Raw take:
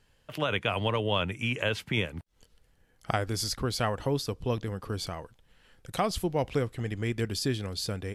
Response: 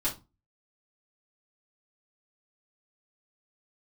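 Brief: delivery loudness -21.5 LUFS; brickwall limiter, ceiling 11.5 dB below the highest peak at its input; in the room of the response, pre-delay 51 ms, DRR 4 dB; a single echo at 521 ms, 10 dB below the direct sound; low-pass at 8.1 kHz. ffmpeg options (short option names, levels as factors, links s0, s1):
-filter_complex "[0:a]lowpass=8100,alimiter=limit=0.0668:level=0:latency=1,aecho=1:1:521:0.316,asplit=2[s0][s1];[1:a]atrim=start_sample=2205,adelay=51[s2];[s1][s2]afir=irnorm=-1:irlink=0,volume=0.299[s3];[s0][s3]amix=inputs=2:normalize=0,volume=3.76"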